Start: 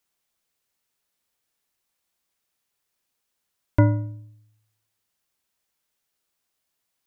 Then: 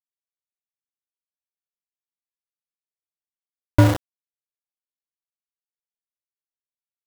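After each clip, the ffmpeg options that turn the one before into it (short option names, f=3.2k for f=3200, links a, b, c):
-af "aeval=exprs='val(0)*gte(abs(val(0)),0.1)':c=same,volume=3.5dB"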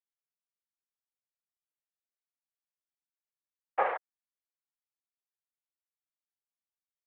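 -af "highpass=f=370:t=q:w=0.5412,highpass=f=370:t=q:w=1.307,lowpass=f=2.2k:t=q:w=0.5176,lowpass=f=2.2k:t=q:w=0.7071,lowpass=f=2.2k:t=q:w=1.932,afreqshift=230,afftfilt=real='hypot(re,im)*cos(2*PI*random(0))':imag='hypot(re,im)*sin(2*PI*random(1))':win_size=512:overlap=0.75"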